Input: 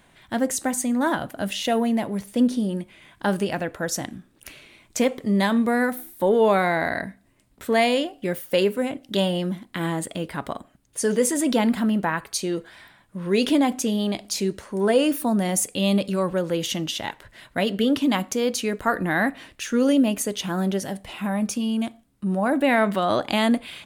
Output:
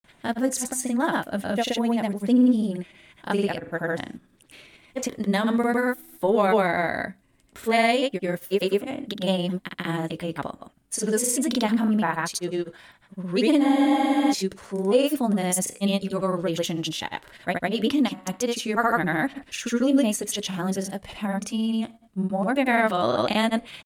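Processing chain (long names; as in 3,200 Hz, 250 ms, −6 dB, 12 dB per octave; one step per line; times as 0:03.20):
granular cloud, grains 20 per second, pitch spread up and down by 0 semitones
frozen spectrum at 0:13.64, 0.68 s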